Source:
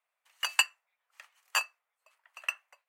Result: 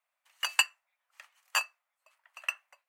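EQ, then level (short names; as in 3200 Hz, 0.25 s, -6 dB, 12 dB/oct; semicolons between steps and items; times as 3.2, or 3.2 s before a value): brick-wall FIR high-pass 490 Hz; 0.0 dB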